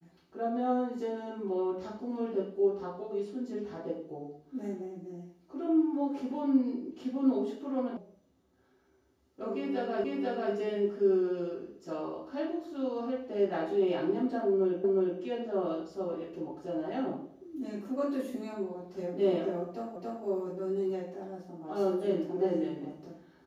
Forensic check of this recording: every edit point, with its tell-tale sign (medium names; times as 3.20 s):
7.97 s: sound stops dead
10.04 s: repeat of the last 0.49 s
14.84 s: repeat of the last 0.36 s
19.96 s: repeat of the last 0.28 s